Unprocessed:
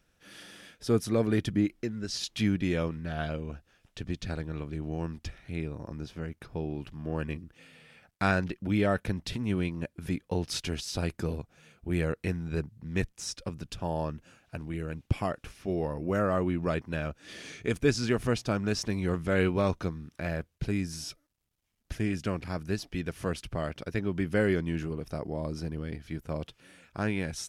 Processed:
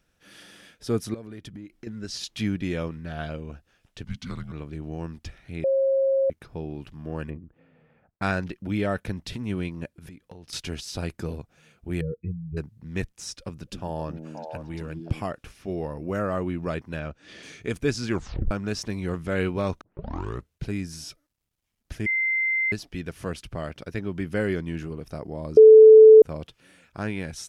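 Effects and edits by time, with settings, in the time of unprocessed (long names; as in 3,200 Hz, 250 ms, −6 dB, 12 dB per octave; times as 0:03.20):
0:01.14–0:01.87: downward compressor 8 to 1, threshold −37 dBFS
0:04.05–0:04.52: frequency shifter −280 Hz
0:05.64–0:06.30: beep over 540 Hz −18.5 dBFS
0:07.30–0:08.22: low-pass filter 1,000 Hz
0:09.91–0:10.53: downward compressor 16 to 1, threshold −40 dBFS
0:12.01–0:12.57: expanding power law on the bin magnitudes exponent 2.9
0:13.32–0:15.23: echo through a band-pass that steps 263 ms, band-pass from 250 Hz, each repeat 1.4 octaves, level −0.5 dB
0:16.99–0:17.43: Bessel low-pass filter 5,300 Hz
0:18.08: tape stop 0.43 s
0:19.81: tape start 0.73 s
0:22.06–0:22.72: beep over 2,080 Hz −21 dBFS
0:25.57–0:26.22: beep over 437 Hz −6 dBFS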